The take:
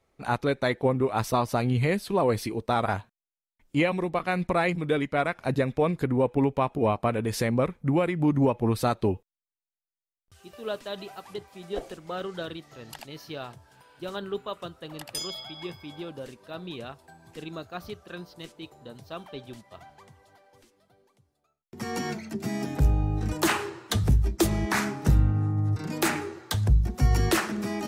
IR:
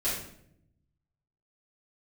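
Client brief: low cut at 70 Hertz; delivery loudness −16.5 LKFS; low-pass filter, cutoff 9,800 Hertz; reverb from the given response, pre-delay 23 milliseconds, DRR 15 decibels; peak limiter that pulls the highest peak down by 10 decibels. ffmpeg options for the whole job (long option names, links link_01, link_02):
-filter_complex "[0:a]highpass=70,lowpass=9800,alimiter=limit=-20dB:level=0:latency=1,asplit=2[link_01][link_02];[1:a]atrim=start_sample=2205,adelay=23[link_03];[link_02][link_03]afir=irnorm=-1:irlink=0,volume=-22.5dB[link_04];[link_01][link_04]amix=inputs=2:normalize=0,volume=15dB"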